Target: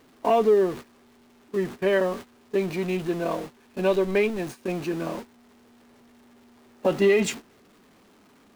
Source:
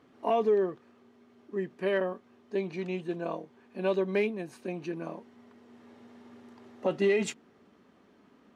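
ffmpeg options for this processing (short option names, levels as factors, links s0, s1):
-filter_complex "[0:a]aeval=exprs='val(0)+0.5*0.0106*sgn(val(0))':c=same,agate=range=0.126:threshold=0.0112:ratio=16:detection=peak,asplit=3[s0][s1][s2];[s0]afade=t=out:st=3.9:d=0.02[s3];[s1]asubboost=boost=6.5:cutoff=52,afade=t=in:st=3.9:d=0.02,afade=t=out:st=4.37:d=0.02[s4];[s2]afade=t=in:st=4.37:d=0.02[s5];[s3][s4][s5]amix=inputs=3:normalize=0,volume=1.88"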